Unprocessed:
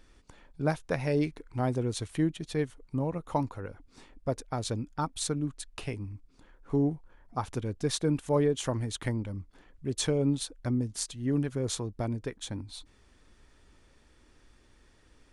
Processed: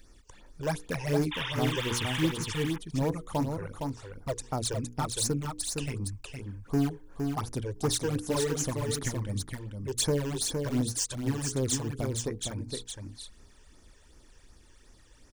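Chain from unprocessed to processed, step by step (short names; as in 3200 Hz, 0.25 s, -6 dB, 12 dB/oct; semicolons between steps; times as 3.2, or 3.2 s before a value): painted sound noise, 1.31–2.32, 820–3700 Hz -37 dBFS; high shelf 5200 Hz +10 dB; in parallel at -10 dB: wrapped overs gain 23.5 dB; on the sum: notches 60/120/180/240/300/360/420/480 Hz; phaser stages 12, 2.7 Hz, lowest notch 210–3500 Hz; on a send: echo 0.463 s -5 dB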